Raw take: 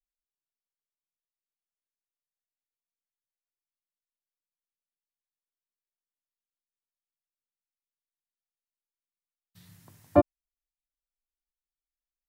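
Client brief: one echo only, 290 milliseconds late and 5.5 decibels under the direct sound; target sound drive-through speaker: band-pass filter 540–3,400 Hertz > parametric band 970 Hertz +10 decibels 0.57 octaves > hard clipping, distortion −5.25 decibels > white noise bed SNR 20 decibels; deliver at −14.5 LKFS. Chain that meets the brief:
band-pass filter 540–3,400 Hz
parametric band 970 Hz +10 dB 0.57 octaves
single-tap delay 290 ms −5.5 dB
hard clipping −25 dBFS
white noise bed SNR 20 dB
level +21 dB

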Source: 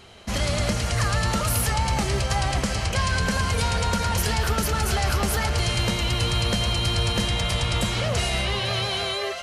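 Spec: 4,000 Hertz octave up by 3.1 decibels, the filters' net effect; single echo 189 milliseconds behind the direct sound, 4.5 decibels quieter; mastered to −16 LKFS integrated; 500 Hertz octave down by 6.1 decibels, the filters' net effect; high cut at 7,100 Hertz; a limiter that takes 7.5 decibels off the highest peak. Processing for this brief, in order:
low-pass filter 7,100 Hz
parametric band 500 Hz −8 dB
parametric band 4,000 Hz +4.5 dB
brickwall limiter −18.5 dBFS
single-tap delay 189 ms −4.5 dB
level +9.5 dB

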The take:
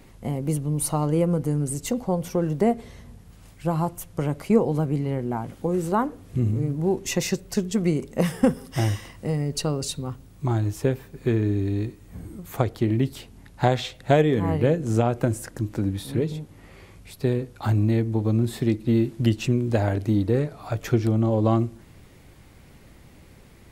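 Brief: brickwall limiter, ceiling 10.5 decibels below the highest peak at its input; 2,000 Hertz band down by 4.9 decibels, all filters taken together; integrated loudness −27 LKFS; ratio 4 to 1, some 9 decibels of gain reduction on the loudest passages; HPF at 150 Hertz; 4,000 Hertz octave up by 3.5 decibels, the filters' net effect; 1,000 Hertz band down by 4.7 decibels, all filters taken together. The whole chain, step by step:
high-pass filter 150 Hz
parametric band 1,000 Hz −6 dB
parametric band 2,000 Hz −6.5 dB
parametric band 4,000 Hz +6.5 dB
downward compressor 4 to 1, threshold −25 dBFS
level +7 dB
brickwall limiter −17 dBFS

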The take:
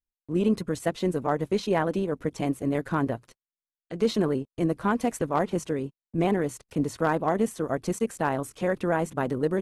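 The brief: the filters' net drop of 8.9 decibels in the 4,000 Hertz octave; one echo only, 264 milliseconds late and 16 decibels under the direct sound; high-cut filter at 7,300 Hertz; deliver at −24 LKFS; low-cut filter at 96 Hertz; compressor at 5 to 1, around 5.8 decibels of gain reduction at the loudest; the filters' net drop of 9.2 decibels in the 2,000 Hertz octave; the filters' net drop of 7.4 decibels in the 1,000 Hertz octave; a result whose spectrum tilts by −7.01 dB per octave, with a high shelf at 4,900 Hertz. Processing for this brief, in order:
high-pass filter 96 Hz
low-pass filter 7,300 Hz
parametric band 1,000 Hz −8.5 dB
parametric band 2,000 Hz −7 dB
parametric band 4,000 Hz −5.5 dB
high-shelf EQ 4,900 Hz −5.5 dB
downward compressor 5 to 1, threshold −27 dBFS
single-tap delay 264 ms −16 dB
level +9.5 dB

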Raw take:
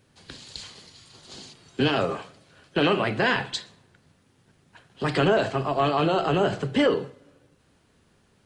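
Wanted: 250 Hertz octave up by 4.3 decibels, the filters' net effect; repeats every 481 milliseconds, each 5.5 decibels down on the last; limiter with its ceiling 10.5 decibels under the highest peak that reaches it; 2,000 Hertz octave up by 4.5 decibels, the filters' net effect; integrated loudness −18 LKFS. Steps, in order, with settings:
parametric band 250 Hz +5.5 dB
parametric band 2,000 Hz +6 dB
brickwall limiter −16 dBFS
repeating echo 481 ms, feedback 53%, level −5.5 dB
level +9 dB

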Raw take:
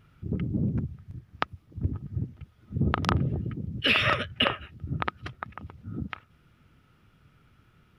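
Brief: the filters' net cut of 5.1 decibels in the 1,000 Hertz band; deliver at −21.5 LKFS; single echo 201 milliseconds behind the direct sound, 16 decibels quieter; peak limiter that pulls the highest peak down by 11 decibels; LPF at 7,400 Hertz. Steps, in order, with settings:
low-pass filter 7,400 Hz
parametric band 1,000 Hz −7 dB
brickwall limiter −18.5 dBFS
single-tap delay 201 ms −16 dB
level +11 dB

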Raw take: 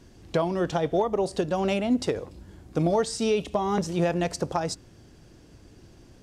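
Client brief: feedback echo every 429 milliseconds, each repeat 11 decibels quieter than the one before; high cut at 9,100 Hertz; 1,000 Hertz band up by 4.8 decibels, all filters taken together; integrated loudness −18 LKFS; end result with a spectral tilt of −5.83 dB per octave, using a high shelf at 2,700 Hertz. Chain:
low-pass filter 9,100 Hz
parametric band 1,000 Hz +7 dB
high-shelf EQ 2,700 Hz −4 dB
repeating echo 429 ms, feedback 28%, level −11 dB
level +7 dB

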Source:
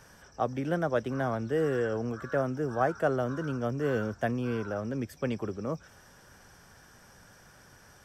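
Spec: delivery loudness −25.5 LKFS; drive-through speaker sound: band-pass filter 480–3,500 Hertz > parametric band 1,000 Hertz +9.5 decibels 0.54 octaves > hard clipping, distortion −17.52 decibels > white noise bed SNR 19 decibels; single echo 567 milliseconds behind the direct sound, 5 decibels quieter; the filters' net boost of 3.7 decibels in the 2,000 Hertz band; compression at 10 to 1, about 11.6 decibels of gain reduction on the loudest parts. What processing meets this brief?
parametric band 2,000 Hz +3.5 dB
downward compressor 10 to 1, threshold −33 dBFS
band-pass filter 480–3,500 Hz
parametric band 1,000 Hz +9.5 dB 0.54 octaves
single-tap delay 567 ms −5 dB
hard clipping −28 dBFS
white noise bed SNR 19 dB
level +14 dB

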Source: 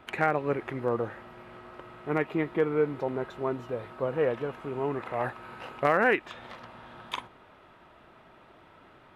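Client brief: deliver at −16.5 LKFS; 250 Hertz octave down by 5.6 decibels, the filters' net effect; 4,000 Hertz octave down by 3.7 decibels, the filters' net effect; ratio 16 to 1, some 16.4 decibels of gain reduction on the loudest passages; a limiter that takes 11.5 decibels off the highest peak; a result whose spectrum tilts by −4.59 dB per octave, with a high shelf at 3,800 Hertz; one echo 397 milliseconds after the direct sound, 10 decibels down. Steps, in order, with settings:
parametric band 250 Hz −8 dB
high-shelf EQ 3,800 Hz +5.5 dB
parametric band 4,000 Hz −8.5 dB
downward compressor 16 to 1, threshold −36 dBFS
brickwall limiter −31.5 dBFS
single-tap delay 397 ms −10 dB
level +27.5 dB

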